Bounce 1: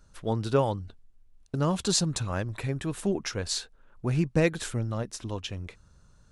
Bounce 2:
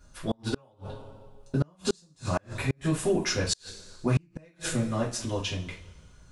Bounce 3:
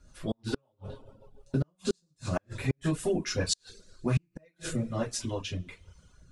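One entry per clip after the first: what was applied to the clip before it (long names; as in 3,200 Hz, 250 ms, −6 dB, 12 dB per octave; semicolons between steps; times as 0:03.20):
coupled-rooms reverb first 0.3 s, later 1.6 s, from −21 dB, DRR −6 dB; gate with flip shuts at −13 dBFS, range −37 dB; level −1.5 dB
reverb reduction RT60 0.67 s; rotating-speaker cabinet horn 7 Hz, later 1.2 Hz, at 0:02.53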